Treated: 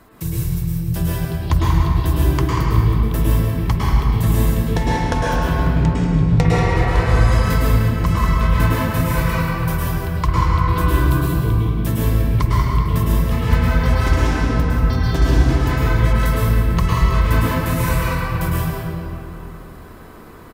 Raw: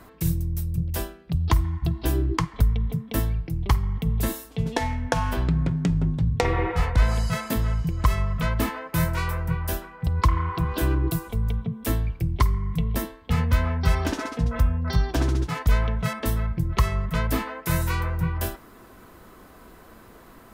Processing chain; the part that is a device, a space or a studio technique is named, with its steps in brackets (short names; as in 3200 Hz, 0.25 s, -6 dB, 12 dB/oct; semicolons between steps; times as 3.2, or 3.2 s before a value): cave (echo 0.187 s -10.5 dB; reverb RT60 2.9 s, pre-delay 0.1 s, DRR -7 dB); gain -1 dB